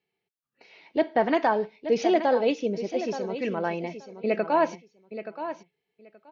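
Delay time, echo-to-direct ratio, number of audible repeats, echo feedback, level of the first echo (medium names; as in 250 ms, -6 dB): 876 ms, -11.0 dB, 2, 16%, -11.0 dB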